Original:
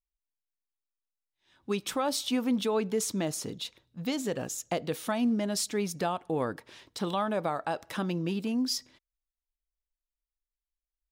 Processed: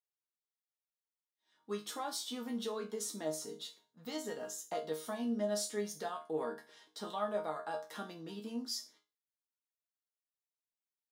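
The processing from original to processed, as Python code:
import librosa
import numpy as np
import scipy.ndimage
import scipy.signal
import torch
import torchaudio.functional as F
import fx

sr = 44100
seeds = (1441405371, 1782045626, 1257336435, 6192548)

y = scipy.signal.sosfilt(scipy.signal.butter(2, 290.0, 'highpass', fs=sr, output='sos'), x)
y = fx.peak_eq(y, sr, hz=2500.0, db=-11.0, octaves=0.35)
y = fx.resonator_bank(y, sr, root=51, chord='sus4', decay_s=0.3)
y = F.gain(torch.from_numpy(y), 8.5).numpy()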